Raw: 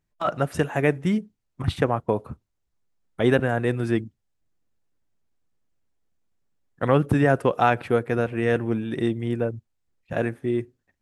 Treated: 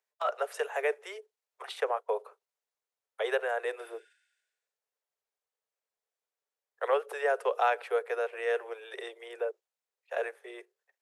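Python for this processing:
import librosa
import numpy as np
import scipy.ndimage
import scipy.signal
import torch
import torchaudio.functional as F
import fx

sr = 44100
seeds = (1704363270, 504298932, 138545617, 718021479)

p1 = fx.spec_repair(x, sr, seeds[0], start_s=3.84, length_s=0.94, low_hz=1400.0, high_hz=9600.0, source='both')
p2 = fx.level_steps(p1, sr, step_db=16)
p3 = p1 + F.gain(torch.from_numpy(p2), 0.0).numpy()
p4 = scipy.signal.sosfilt(scipy.signal.butter(16, 410.0, 'highpass', fs=sr, output='sos'), p3)
y = F.gain(torch.from_numpy(p4), -8.0).numpy()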